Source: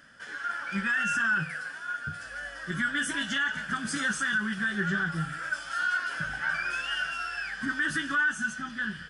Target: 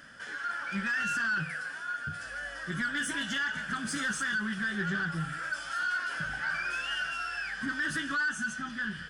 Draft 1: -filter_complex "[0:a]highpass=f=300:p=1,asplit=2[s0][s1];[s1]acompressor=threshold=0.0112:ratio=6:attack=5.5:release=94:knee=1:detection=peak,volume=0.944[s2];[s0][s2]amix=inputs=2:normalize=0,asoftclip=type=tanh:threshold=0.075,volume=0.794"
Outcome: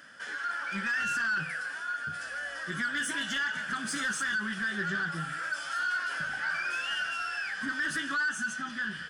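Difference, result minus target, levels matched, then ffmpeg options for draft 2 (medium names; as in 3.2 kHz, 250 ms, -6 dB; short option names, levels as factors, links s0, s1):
compression: peak gain reduction -7 dB; 250 Hz band -3.5 dB
-filter_complex "[0:a]asplit=2[s0][s1];[s1]acompressor=threshold=0.00422:ratio=6:attack=5.5:release=94:knee=1:detection=peak,volume=0.944[s2];[s0][s2]amix=inputs=2:normalize=0,asoftclip=type=tanh:threshold=0.075,volume=0.794"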